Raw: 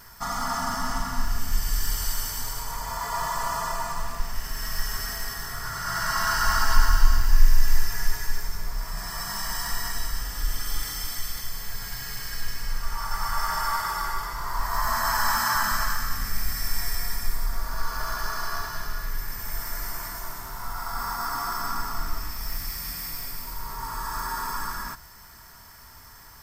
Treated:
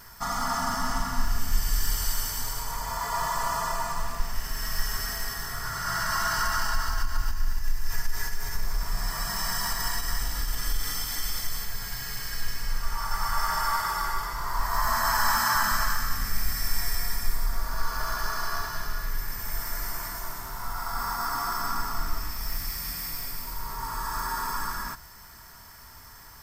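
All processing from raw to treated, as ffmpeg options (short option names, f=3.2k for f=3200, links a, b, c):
-filter_complex "[0:a]asettb=1/sr,asplit=3[a][b][c];[a]atrim=end=5.814[d];[b]atrim=start=5.81:end=11.65,asetpts=PTS-STARTPTS,afade=t=in:d=0.004:c=qsin,afade=t=out:st=5.836:d=0.004:c=qsin,acompressor=threshold=-23dB:ratio=6:attack=3.2:release=140:knee=1:detection=peak,aecho=1:1:277:0.708,atrim=end_sample=257544[e];[c]atrim=start=11.646[f];[d][e]acrossfade=d=0.004:c1=hsin:c2=qsin[g];[g][f]acrossfade=d=0.004:c1=qsin:c2=hsin"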